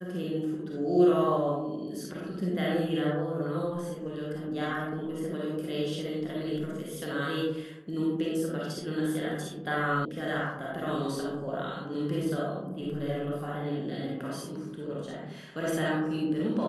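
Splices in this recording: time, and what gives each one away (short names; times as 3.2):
10.05 sound cut off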